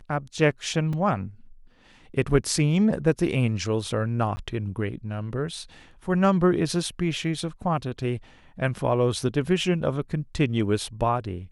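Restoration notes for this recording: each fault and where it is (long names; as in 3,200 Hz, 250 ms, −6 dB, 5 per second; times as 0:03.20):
0:00.93: drop-out 3.6 ms
0:04.36–0:04.37: drop-out 10 ms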